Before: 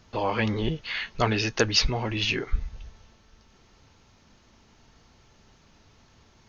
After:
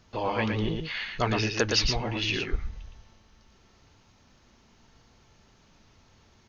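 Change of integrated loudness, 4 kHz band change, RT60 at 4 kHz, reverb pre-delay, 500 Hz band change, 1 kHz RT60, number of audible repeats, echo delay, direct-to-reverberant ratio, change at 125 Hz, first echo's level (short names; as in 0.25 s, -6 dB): -1.5 dB, -1.5 dB, none, none, -1.5 dB, none, 1, 0.114 s, none, -1.5 dB, -4.5 dB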